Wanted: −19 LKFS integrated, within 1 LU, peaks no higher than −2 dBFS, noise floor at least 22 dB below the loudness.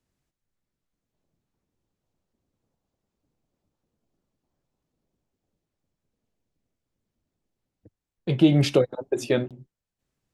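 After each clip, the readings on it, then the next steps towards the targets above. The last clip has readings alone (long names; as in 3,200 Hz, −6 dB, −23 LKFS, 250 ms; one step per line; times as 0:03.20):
number of dropouts 1; longest dropout 27 ms; integrated loudness −23.0 LKFS; sample peak −7.0 dBFS; target loudness −19.0 LKFS
→ repair the gap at 0:09.48, 27 ms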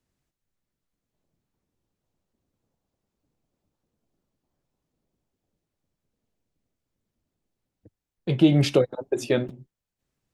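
number of dropouts 0; integrated loudness −23.0 LKFS; sample peak −7.0 dBFS; target loudness −19.0 LKFS
→ level +4 dB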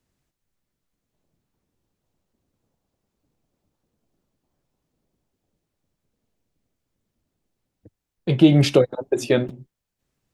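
integrated loudness −19.0 LKFS; sample peak −3.0 dBFS; background noise floor −82 dBFS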